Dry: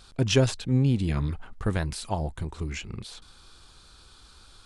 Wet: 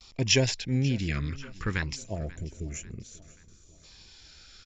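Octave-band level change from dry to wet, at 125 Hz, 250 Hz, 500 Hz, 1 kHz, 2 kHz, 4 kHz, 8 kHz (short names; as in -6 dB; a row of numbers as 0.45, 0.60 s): -4.0, -4.0, -4.0, -7.5, +3.5, +3.0, +3.5 dB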